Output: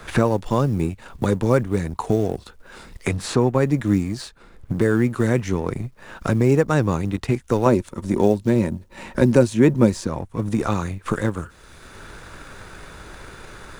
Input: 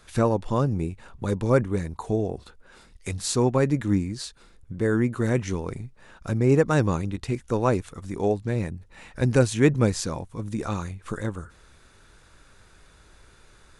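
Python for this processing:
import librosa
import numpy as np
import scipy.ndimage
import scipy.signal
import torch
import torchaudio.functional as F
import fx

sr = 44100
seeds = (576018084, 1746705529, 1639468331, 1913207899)

y = fx.law_mismatch(x, sr, coded='A')
y = fx.small_body(y, sr, hz=(230.0, 350.0, 550.0, 930.0), ring_ms=45, db=10, at=(7.66, 10.07))
y = fx.band_squash(y, sr, depth_pct=70)
y = y * librosa.db_to_amplitude(3.5)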